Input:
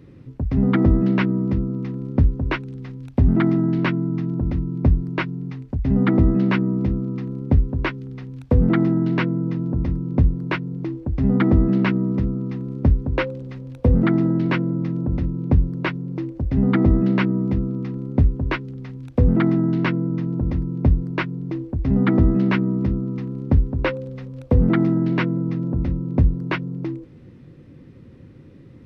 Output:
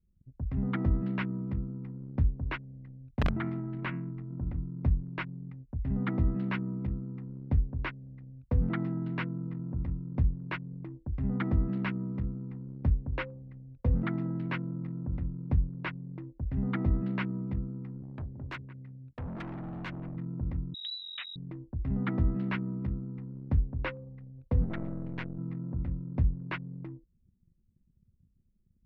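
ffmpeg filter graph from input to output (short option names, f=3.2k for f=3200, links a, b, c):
-filter_complex "[0:a]asettb=1/sr,asplit=3[a][b][c];[a]atrim=end=3.154[d];[b]atrim=start=3.15:end=4.57,asetpts=PTS-STARTPTS,afade=t=in:d=0.004:c=qsin,afade=t=out:st=1.416:d=0.004:c=qsin,bandreject=f=86.5:t=h:w=4,bandreject=f=173:t=h:w=4,bandreject=f=259.5:t=h:w=4,bandreject=f=346:t=h:w=4,bandreject=f=432.5:t=h:w=4,bandreject=f=519:t=h:w=4,bandreject=f=605.5:t=h:w=4,bandreject=f=692:t=h:w=4,bandreject=f=778.5:t=h:w=4,bandreject=f=865:t=h:w=4,bandreject=f=951.5:t=h:w=4,bandreject=f=1.038k:t=h:w=4,bandreject=f=1.1245k:t=h:w=4,bandreject=f=1.211k:t=h:w=4,bandreject=f=1.2975k:t=h:w=4,bandreject=f=1.384k:t=h:w=4,bandreject=f=1.4705k:t=h:w=4,bandreject=f=1.557k:t=h:w=4,bandreject=f=1.6435k:t=h:w=4,bandreject=f=1.73k:t=h:w=4,bandreject=f=1.8165k:t=h:w=4,bandreject=f=1.903k:t=h:w=4,bandreject=f=1.9895k:t=h:w=4,bandreject=f=2.076k:t=h:w=4,bandreject=f=2.1625k:t=h:w=4,bandreject=f=2.249k:t=h:w=4,bandreject=f=2.3355k:t=h:w=4,bandreject=f=2.422k:t=h:w=4,bandreject=f=2.5085k:t=h:w=4,bandreject=f=2.595k:t=h:w=4,bandreject=f=2.6815k:t=h:w=4,bandreject=f=2.768k:t=h:w=4,bandreject=f=2.8545k:t=h:w=4,acrossover=split=4000[e][f];[f]acompressor=threshold=-56dB:ratio=4:attack=1:release=60[g];[e][g]amix=inputs=2:normalize=0,aeval=exprs='(mod(2.66*val(0)+1,2)-1)/2.66':c=same[h];[c]atrim=start=4.566[i];[d][h]acrossfade=d=0.004:c1=hsin:c2=qsin[j];[j][i]acrossfade=d=0.004:c1=qsin:c2=hsin,asettb=1/sr,asplit=3[k][l][m];[k]atrim=end=18.024[n];[l]atrim=start=18.02:end=20.17,asetpts=PTS-STARTPTS,afade=t=in:d=0.004:c=qsin,afade=t=out:st=2.146:d=0.004:c=qsin,highpass=f=84:w=0.5412,highpass=f=84:w=1.3066,aecho=1:1:175|350:0.141|0.0297,atrim=end_sample=94815,asoftclip=type=hard:threshold=-23.5dB[o];[m]atrim=start=20.166[p];[n][o]acrossfade=d=0.004:c1=hsin:c2=qsin[q];[q][p]acrossfade=d=0.004:c1=qsin:c2=hsin,asettb=1/sr,asplit=3[r][s][t];[r]atrim=end=20.744[u];[s]atrim=start=20.74:end=21.36,asetpts=PTS-STARTPTS,afade=t=in:d=0.004:c=qsin,afade=t=out:st=0.616:d=0.004:c=qsin,lowpass=f=3.4k:t=q:w=0.5098,lowpass=f=3.4k:t=q:w=0.6013,lowpass=f=3.4k:t=q:w=0.9,lowpass=f=3.4k:t=q:w=2.563,afreqshift=-4000,acompressor=threshold=-24dB:ratio=2.5:attack=3.2:release=140:knee=1:detection=peak[v];[t]atrim=start=21.356[w];[u][v]acrossfade=d=0.004:c1=hsin:c2=qsin[x];[x][w]acrossfade=d=0.004:c1=qsin:c2=hsin,asettb=1/sr,asplit=3[y][z][aa];[y]atrim=end=24.644[ab];[z]atrim=start=24.64:end=25.38,asetpts=PTS-STARTPTS,afade=t=in:d=0.004:c=qsin,afade=t=out:st=0.736:d=0.004:c=qsin,bandreject=f=1.2k:w=7.1,aeval=exprs='(tanh(5.62*val(0)+0.8)-tanh(0.8))/5.62':c=same[ac];[aa]atrim=start=25.376[ad];[ab][ac]acrossfade=d=0.004:c1=hsin:c2=qsin[ae];[ae][ad]acrossfade=d=0.004:c1=qsin:c2=hsin,equalizer=f=370:t=o:w=1.9:g=-8.5,anlmdn=6.31,acrossover=split=3700[af][ag];[ag]acompressor=threshold=-53dB:ratio=4:attack=1:release=60[ah];[af][ah]amix=inputs=2:normalize=0,volume=-9dB"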